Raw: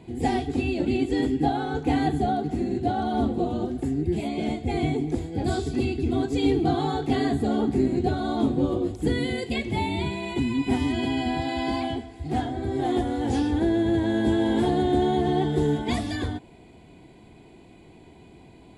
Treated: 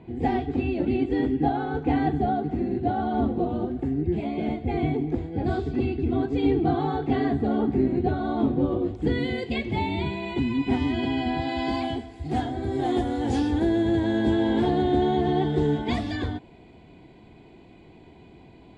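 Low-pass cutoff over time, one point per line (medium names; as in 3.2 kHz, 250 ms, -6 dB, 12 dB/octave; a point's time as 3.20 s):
8.71 s 2.4 kHz
9.27 s 3.9 kHz
11.32 s 3.9 kHz
11.95 s 8.5 kHz
13.78 s 8.5 kHz
14.52 s 4.5 kHz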